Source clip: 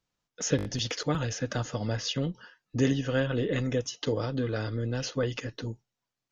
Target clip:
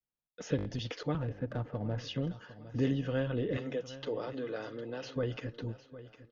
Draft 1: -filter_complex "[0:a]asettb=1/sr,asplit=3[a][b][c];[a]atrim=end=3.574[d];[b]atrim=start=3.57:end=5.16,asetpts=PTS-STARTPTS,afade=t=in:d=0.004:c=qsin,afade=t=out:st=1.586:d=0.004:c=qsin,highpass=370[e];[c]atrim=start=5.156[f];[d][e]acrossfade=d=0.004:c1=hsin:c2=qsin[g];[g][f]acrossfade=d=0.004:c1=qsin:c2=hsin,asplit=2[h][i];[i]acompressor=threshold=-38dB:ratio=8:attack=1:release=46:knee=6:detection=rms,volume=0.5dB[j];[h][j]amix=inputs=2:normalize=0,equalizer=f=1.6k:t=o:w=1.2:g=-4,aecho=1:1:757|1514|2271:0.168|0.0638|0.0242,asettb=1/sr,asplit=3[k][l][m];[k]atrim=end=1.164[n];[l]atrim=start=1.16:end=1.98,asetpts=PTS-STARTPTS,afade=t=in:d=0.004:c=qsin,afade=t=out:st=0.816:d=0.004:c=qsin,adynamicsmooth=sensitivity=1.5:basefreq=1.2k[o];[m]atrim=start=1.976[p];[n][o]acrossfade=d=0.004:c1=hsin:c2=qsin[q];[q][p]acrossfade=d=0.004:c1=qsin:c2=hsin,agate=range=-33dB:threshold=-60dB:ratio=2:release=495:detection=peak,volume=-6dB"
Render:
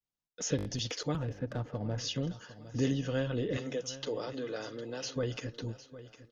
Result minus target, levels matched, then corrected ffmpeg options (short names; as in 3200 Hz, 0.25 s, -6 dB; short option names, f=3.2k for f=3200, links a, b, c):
4000 Hz band +5.0 dB
-filter_complex "[0:a]asettb=1/sr,asplit=3[a][b][c];[a]atrim=end=3.574[d];[b]atrim=start=3.57:end=5.16,asetpts=PTS-STARTPTS,afade=t=in:d=0.004:c=qsin,afade=t=out:st=1.586:d=0.004:c=qsin,highpass=370[e];[c]atrim=start=5.156[f];[d][e]acrossfade=d=0.004:c1=hsin:c2=qsin[g];[g][f]acrossfade=d=0.004:c1=qsin:c2=hsin,asplit=2[h][i];[i]acompressor=threshold=-38dB:ratio=8:attack=1:release=46:knee=6:detection=rms,volume=0.5dB[j];[h][j]amix=inputs=2:normalize=0,lowpass=2.9k,equalizer=f=1.6k:t=o:w=1.2:g=-4,aecho=1:1:757|1514|2271:0.168|0.0638|0.0242,asettb=1/sr,asplit=3[k][l][m];[k]atrim=end=1.164[n];[l]atrim=start=1.16:end=1.98,asetpts=PTS-STARTPTS,afade=t=in:d=0.004:c=qsin,afade=t=out:st=0.816:d=0.004:c=qsin,adynamicsmooth=sensitivity=1.5:basefreq=1.2k[o];[m]atrim=start=1.976[p];[n][o]acrossfade=d=0.004:c1=hsin:c2=qsin[q];[q][p]acrossfade=d=0.004:c1=qsin:c2=hsin,agate=range=-33dB:threshold=-60dB:ratio=2:release=495:detection=peak,volume=-6dB"